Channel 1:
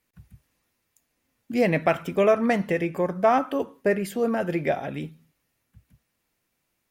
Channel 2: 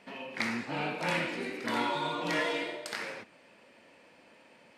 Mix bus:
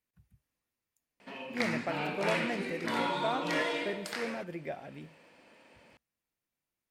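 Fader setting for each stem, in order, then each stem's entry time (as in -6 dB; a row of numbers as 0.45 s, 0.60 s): -14.5 dB, -1.0 dB; 0.00 s, 1.20 s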